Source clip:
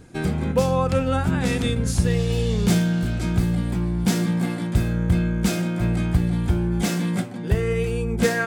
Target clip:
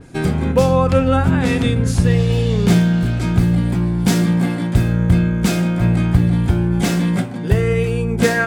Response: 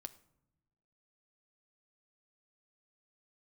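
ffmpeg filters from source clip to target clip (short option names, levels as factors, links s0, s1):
-filter_complex "[0:a]asplit=2[s0][s1];[1:a]atrim=start_sample=2205[s2];[s1][s2]afir=irnorm=-1:irlink=0,volume=3.55[s3];[s0][s3]amix=inputs=2:normalize=0,adynamicequalizer=threshold=0.0178:dfrequency=4000:dqfactor=0.7:tfrequency=4000:tqfactor=0.7:attack=5:release=100:ratio=0.375:range=3.5:mode=cutabove:tftype=highshelf,volume=0.668"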